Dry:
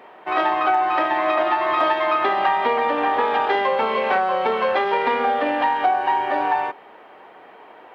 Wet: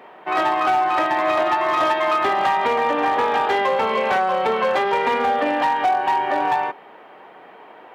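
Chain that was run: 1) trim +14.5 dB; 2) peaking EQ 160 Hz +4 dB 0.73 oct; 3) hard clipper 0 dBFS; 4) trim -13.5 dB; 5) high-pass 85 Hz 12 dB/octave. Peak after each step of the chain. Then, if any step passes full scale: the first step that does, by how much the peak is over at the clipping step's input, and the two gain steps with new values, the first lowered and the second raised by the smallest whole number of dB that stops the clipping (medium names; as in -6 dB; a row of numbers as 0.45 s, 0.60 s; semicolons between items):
+7.0 dBFS, +7.0 dBFS, 0.0 dBFS, -13.5 dBFS, -11.5 dBFS; step 1, 7.0 dB; step 1 +7.5 dB, step 4 -6.5 dB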